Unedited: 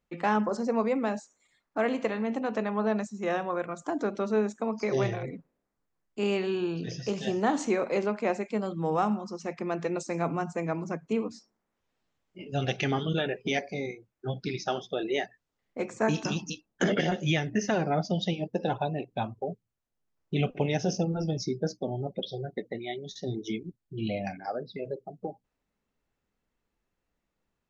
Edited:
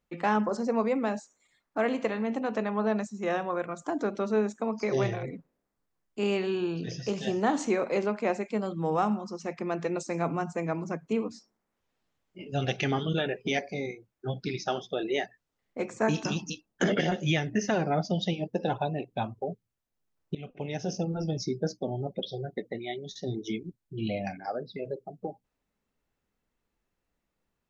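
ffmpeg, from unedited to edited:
ffmpeg -i in.wav -filter_complex "[0:a]asplit=2[link_01][link_02];[link_01]atrim=end=20.35,asetpts=PTS-STARTPTS,afade=type=out:start_time=20.346:duration=0.004:curve=hsin:silence=0.0944061[link_03];[link_02]atrim=start=20.35,asetpts=PTS-STARTPTS,afade=type=in:duration=1.33:curve=qsin:silence=0.0944061[link_04];[link_03][link_04]concat=n=2:v=0:a=1" out.wav

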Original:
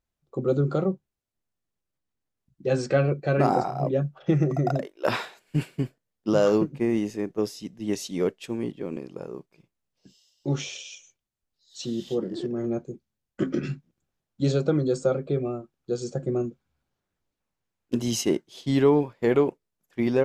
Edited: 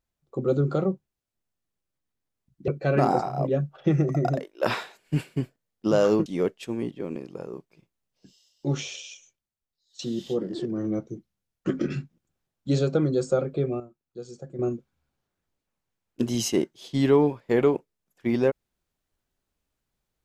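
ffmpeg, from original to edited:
ffmpeg -i in.wav -filter_complex "[0:a]asplit=8[link_01][link_02][link_03][link_04][link_05][link_06][link_07][link_08];[link_01]atrim=end=2.682[link_09];[link_02]atrim=start=3.098:end=6.682[link_10];[link_03]atrim=start=8.068:end=11.8,asetpts=PTS-STARTPTS,afade=type=out:start_time=2.762:duration=0.97:silence=0.211349[link_11];[link_04]atrim=start=11.8:end=12.494,asetpts=PTS-STARTPTS,afade=type=in:duration=0.004:curve=hsin:silence=0.211349[link_12];[link_05]atrim=start=12.49:end=13.41,asetpts=PTS-STARTPTS,asetrate=40572,aresample=44100[link_13];[link_06]atrim=start=13.406:end=15.532[link_14];[link_07]atrim=start=15.528:end=16.322,asetpts=PTS-STARTPTS,volume=-10.5dB[link_15];[link_08]atrim=start=16.318[link_16];[link_09][link_10]acrossfade=duration=0.004:curve1=hsin:curve2=hsin[link_17];[link_11][link_12]concat=n=2:v=0:a=1[link_18];[link_17][link_18]acrossfade=duration=0.004:curve1=hsin:curve2=hsin[link_19];[link_19][link_13]acrossfade=duration=0.004:curve1=hsin:curve2=hsin[link_20];[link_20][link_14]acrossfade=duration=0.004:curve1=hsin:curve2=hsin[link_21];[link_21][link_15]acrossfade=duration=0.004:curve1=hsin:curve2=hsin[link_22];[link_22][link_16]acrossfade=duration=0.004:curve1=hsin:curve2=hsin" out.wav

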